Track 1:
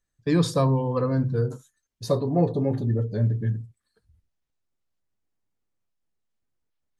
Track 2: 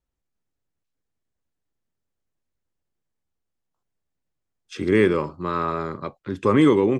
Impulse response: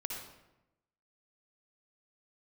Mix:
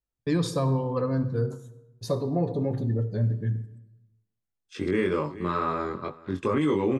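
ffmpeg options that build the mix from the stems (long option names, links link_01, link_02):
-filter_complex "[0:a]agate=range=-24dB:threshold=-50dB:ratio=16:detection=peak,volume=-4.5dB,asplit=2[link_01][link_02];[link_02]volume=-10dB[link_03];[1:a]agate=range=-7dB:threshold=-38dB:ratio=16:detection=peak,flanger=delay=20:depth=2.5:speed=2.1,volume=1dB,asplit=2[link_04][link_05];[link_05]volume=-21dB[link_06];[2:a]atrim=start_sample=2205[link_07];[link_03][link_07]afir=irnorm=-1:irlink=0[link_08];[link_06]aecho=0:1:429:1[link_09];[link_01][link_04][link_08][link_09]amix=inputs=4:normalize=0,alimiter=limit=-16dB:level=0:latency=1:release=76"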